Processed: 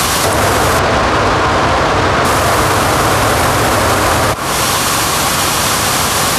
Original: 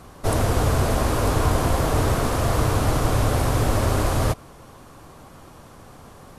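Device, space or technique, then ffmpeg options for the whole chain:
mastering chain: -filter_complex "[0:a]highpass=f=54:w=0.5412,highpass=f=54:w=1.3066,equalizer=f=4200:t=o:w=2.6:g=4,acrossover=split=180|2000[s0][s1][s2];[s0]acompressor=threshold=0.0251:ratio=4[s3];[s1]acompressor=threshold=0.0501:ratio=4[s4];[s2]acompressor=threshold=0.00501:ratio=4[s5];[s3][s4][s5]amix=inputs=3:normalize=0,acompressor=threshold=0.02:ratio=2,tiltshelf=f=970:g=-6.5,asoftclip=type=hard:threshold=0.0631,alimiter=level_in=53.1:limit=0.891:release=50:level=0:latency=1,asettb=1/sr,asplit=3[s6][s7][s8];[s6]atrim=end=0.794[s9];[s7]atrim=start=0.79:end=2.25,asetpts=PTS-STARTPTS,afade=t=in:d=0.004:c=qsin,afade=t=out:st=1.456:d=0.004:c=qsin,lowpass=5000[s10];[s8]atrim=start=2.246[s11];[s9][s10]acrossfade=d=0.004:c1=hsin:c2=qsin[s12];[s12][s11]acrossfade=d=0.004:c1=qsin:c2=hsin,volume=0.794"

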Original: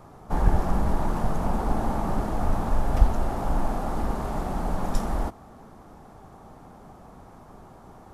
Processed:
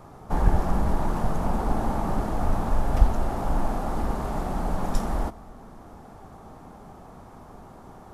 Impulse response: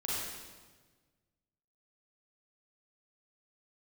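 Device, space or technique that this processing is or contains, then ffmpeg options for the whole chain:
compressed reverb return: -filter_complex "[0:a]asplit=2[s0][s1];[1:a]atrim=start_sample=2205[s2];[s1][s2]afir=irnorm=-1:irlink=0,acompressor=threshold=0.0251:ratio=6,volume=0.251[s3];[s0][s3]amix=inputs=2:normalize=0"

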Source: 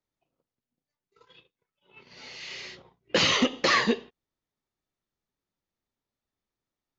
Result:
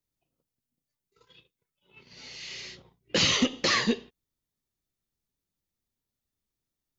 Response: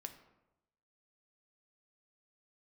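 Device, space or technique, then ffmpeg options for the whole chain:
smiley-face EQ: -af "lowshelf=f=160:g=5,equalizer=f=910:t=o:w=2.8:g=-6,highshelf=f=6500:g=7.5"

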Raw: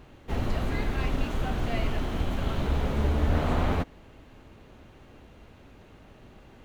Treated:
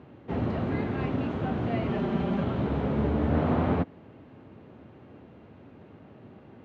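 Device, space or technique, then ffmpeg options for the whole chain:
phone in a pocket: -filter_complex "[0:a]highpass=f=88:w=0.5412,highpass=f=88:w=1.3066,lowpass=3700,equalizer=f=230:t=o:w=2.7:g=5,highshelf=f=2300:g=-8.5,asettb=1/sr,asplit=3[s0][s1][s2];[s0]atrim=end=1.894[s3];[s1]atrim=start=1.89:end=2.44,asetpts=PTS-STARTPTS,afade=t=in:d=0.004:c=qsin,afade=t=out:st=0.546:d=0.004:c=qsin,aecho=1:1:5.1:0.85,atrim=end_sample=24255[s4];[s2]atrim=start=2.436[s5];[s3][s4]acrossfade=d=0.004:c1=hsin:c2=qsin[s6];[s6][s5]acrossfade=d=0.004:c1=qsin:c2=hsin"

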